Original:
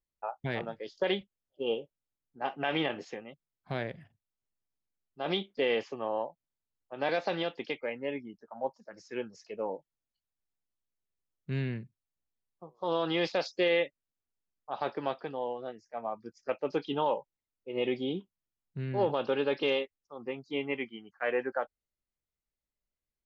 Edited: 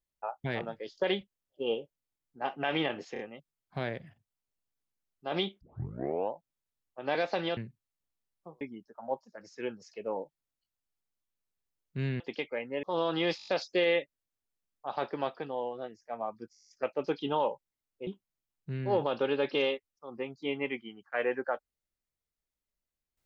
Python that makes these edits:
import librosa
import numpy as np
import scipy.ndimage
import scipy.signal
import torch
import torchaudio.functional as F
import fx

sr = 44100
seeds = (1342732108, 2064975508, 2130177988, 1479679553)

y = fx.edit(x, sr, fx.stutter(start_s=3.13, slice_s=0.03, count=3),
    fx.tape_start(start_s=5.55, length_s=0.7),
    fx.swap(start_s=7.51, length_s=0.63, other_s=11.73, other_length_s=1.04),
    fx.stutter(start_s=13.31, slice_s=0.02, count=6),
    fx.stutter(start_s=16.35, slice_s=0.02, count=10),
    fx.cut(start_s=17.73, length_s=0.42), tone=tone)